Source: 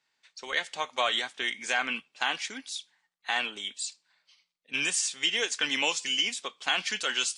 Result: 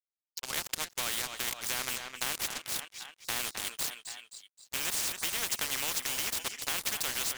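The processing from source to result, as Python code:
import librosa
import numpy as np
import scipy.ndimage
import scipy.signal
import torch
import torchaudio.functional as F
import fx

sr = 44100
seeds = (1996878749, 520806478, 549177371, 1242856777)

p1 = fx.highpass(x, sr, hz=890.0, slope=6)
p2 = np.sign(p1) * np.maximum(np.abs(p1) - 10.0 ** (-38.5 / 20.0), 0.0)
p3 = p2 + fx.echo_feedback(p2, sr, ms=262, feedback_pct=41, wet_db=-22, dry=0)
p4 = fx.spectral_comp(p3, sr, ratio=4.0)
y = p4 * librosa.db_to_amplitude(-1.0)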